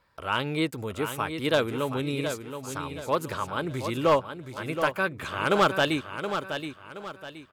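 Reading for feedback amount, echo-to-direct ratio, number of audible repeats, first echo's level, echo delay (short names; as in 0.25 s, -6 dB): 36%, -8.0 dB, 3, -8.5 dB, 0.723 s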